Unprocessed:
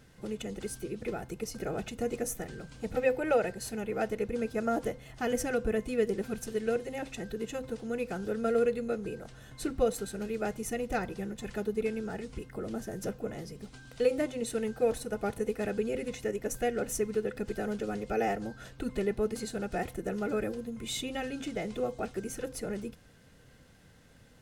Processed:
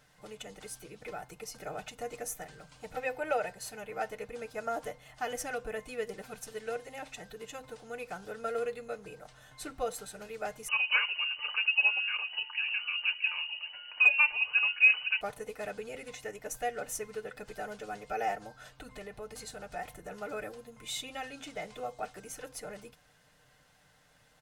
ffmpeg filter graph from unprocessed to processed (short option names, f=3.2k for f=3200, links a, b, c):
-filter_complex "[0:a]asettb=1/sr,asplit=3[a][b][c];[a]atrim=end=10.684[d];[b]atrim=start=10.68:end=15.21,asetpts=PTS-STARTPTS,afade=t=in:d=0.004:c=qsin,afade=t=out:st=4.526:d=0.004:c=qsin,lowpass=f=2.6k:t=q:w=0.5098,lowpass=f=2.6k:t=q:w=0.6013,lowpass=f=2.6k:t=q:w=0.9,lowpass=f=2.6k:t=q:w=2.563,afreqshift=-3000,acontrast=39[e];[c]atrim=start=15.206[f];[d][e]acrossfade=d=0.004:c1=hsin:c2=qsin[g];[g][f]acrossfade=d=0.004:c1=qsin:c2=hsin,asettb=1/sr,asplit=3[h][i][j];[h]atrim=end=18.804[k];[i]atrim=start=18.8:end=20.11,asetpts=PTS-STARTPTS,afade=t=in:d=0.004:c=qsin,afade=t=out:st=1.306:d=0.004:c=qsin,aeval=exprs='val(0)+0.00562*(sin(2*PI*50*n/s)+sin(2*PI*2*50*n/s)/2+sin(2*PI*3*50*n/s)/3+sin(2*PI*4*50*n/s)/4+sin(2*PI*5*50*n/s)/5)':c=same,acompressor=threshold=-33dB:ratio=2:attack=3.2:release=140:knee=1:detection=peak[l];[j]atrim=start=20.106[m];[k][l]acrossfade=d=0.004:c1=hsin:c2=qsin[n];[n][m]acrossfade=d=0.004:c1=qsin:c2=hsin,lowshelf=f=510:t=q:w=1.5:g=-9,aecho=1:1:6.7:0.42,volume=-2.5dB"